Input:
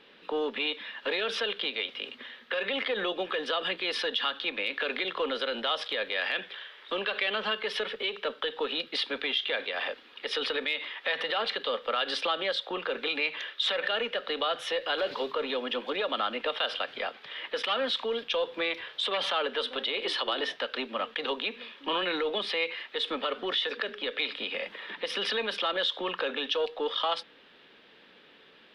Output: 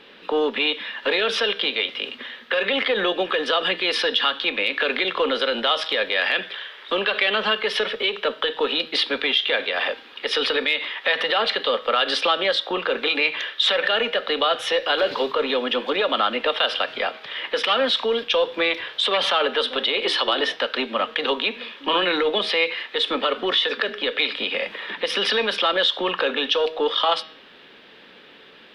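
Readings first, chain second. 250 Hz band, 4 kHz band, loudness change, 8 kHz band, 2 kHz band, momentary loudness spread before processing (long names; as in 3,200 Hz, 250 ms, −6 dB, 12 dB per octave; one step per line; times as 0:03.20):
+9.0 dB, +9.0 dB, +9.0 dB, +9.0 dB, +9.0 dB, 5 LU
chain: hum removal 159.1 Hz, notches 37
level +9 dB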